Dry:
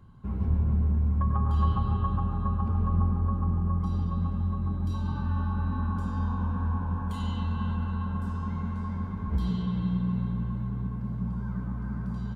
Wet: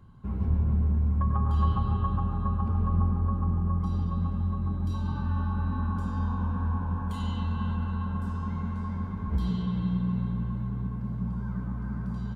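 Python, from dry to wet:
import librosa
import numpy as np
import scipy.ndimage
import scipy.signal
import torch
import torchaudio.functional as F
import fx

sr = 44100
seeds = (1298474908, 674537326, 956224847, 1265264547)

y = fx.quant_float(x, sr, bits=8)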